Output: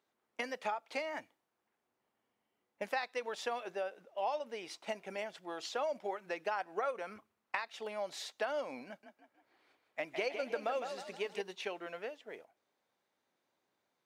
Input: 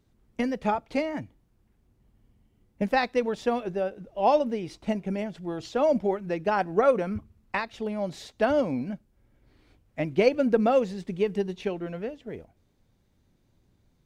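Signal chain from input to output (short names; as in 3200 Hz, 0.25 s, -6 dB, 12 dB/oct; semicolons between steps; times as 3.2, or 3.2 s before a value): HPF 750 Hz 12 dB/oct; compressor 4:1, threshold -34 dBFS, peak gain reduction 12.5 dB; 8.87–11.42 frequency-shifting echo 0.158 s, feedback 46%, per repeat +32 Hz, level -7.5 dB; mismatched tape noise reduction decoder only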